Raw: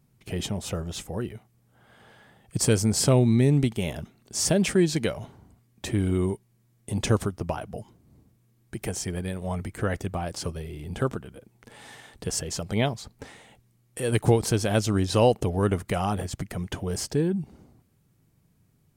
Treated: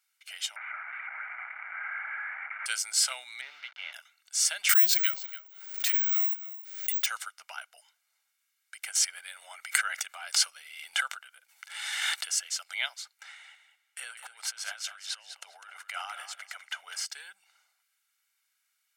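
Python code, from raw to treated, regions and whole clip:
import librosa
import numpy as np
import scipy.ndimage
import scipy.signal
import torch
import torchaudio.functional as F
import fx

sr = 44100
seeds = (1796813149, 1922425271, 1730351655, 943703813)

y = fx.chain(x, sr, fx.delta_mod(bps=32000, step_db=-27.0),
    fx.cheby1_bandpass(low_hz=610.0, high_hz=2300.0, order=5),
    fx.env_flatten(amount_pct=50), at=(0.56, 2.66))
y = fx.chain(y, sr, fx.delta_hold(step_db=-36.0),
    fx.air_absorb(metres=280.0), at=(3.41, 3.93))
y = fx.chain(y, sr, fx.echo_single(ms=285, db=-15.0),
    fx.resample_bad(factor=2, down='filtered', up='zero_stuff'),
    fx.pre_swell(db_per_s=60.0), at=(4.69, 7.06))
y = fx.chain(y, sr, fx.low_shelf(hz=300.0, db=8.0),
    fx.pre_swell(db_per_s=30.0), at=(8.95, 12.35))
y = fx.chain(y, sr, fx.high_shelf(hz=3300.0, db=-10.0),
    fx.over_compress(threshold_db=-27.0, ratio=-0.5),
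    fx.echo_feedback(ms=201, feedback_pct=18, wet_db=-10.0), at=(13.23, 17.06))
y = scipy.signal.sosfilt(scipy.signal.butter(4, 1400.0, 'highpass', fs=sr, output='sos'), y)
y = fx.high_shelf(y, sr, hz=9700.0, db=-6.0)
y = y + 0.58 * np.pad(y, (int(1.4 * sr / 1000.0), 0))[:len(y)]
y = y * 10.0 ** (1.5 / 20.0)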